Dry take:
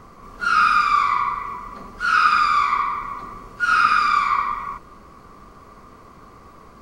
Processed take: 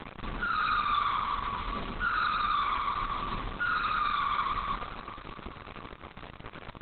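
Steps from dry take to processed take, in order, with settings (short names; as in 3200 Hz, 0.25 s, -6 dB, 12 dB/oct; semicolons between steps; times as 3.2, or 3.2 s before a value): Wiener smoothing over 9 samples; LPF 3300 Hz 12 dB/oct; low shelf 190 Hz +8 dB; de-hum 59.46 Hz, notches 3; in parallel at +1 dB: compressor 5:1, threshold -27 dBFS, peak gain reduction 14 dB; on the sum: bit-crush 5-bit; soft clip -19.5 dBFS, distortion -8 dB; on a send: diffused feedback echo 0.471 s, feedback 49%, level -11 dB; on the sum: gain -4.5 dB; Opus 8 kbps 48000 Hz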